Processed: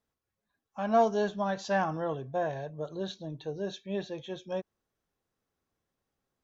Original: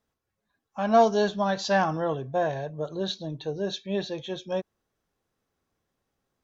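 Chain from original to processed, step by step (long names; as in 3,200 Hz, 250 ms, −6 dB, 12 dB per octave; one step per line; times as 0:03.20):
dynamic equaliser 4,400 Hz, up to −7 dB, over −48 dBFS, Q 1.7
level −5 dB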